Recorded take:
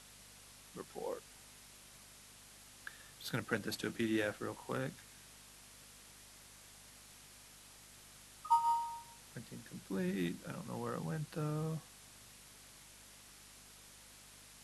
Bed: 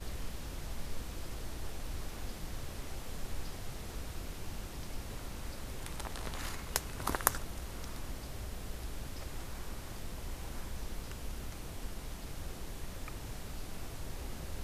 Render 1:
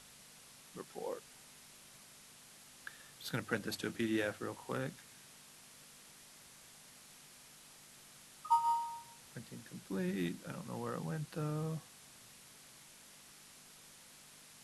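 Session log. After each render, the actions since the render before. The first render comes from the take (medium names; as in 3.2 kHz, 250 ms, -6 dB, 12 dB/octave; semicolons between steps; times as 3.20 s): de-hum 50 Hz, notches 2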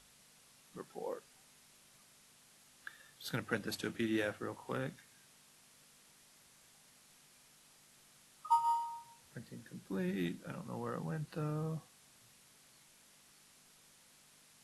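noise print and reduce 6 dB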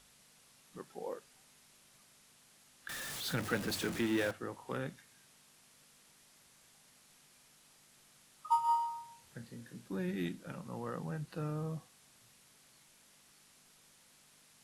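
2.89–4.31 s: jump at every zero crossing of -37.5 dBFS; 8.66–9.88 s: flutter echo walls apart 4.4 m, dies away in 0.21 s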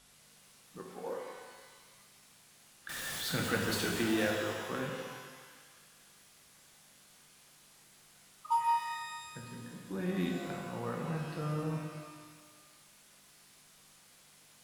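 band-passed feedback delay 168 ms, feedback 65%, band-pass 1.7 kHz, level -8.5 dB; pitch-shifted reverb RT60 1.3 s, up +12 st, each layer -8 dB, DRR 0.5 dB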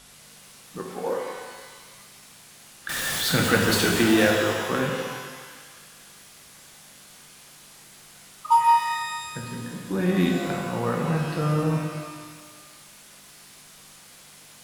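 trim +12 dB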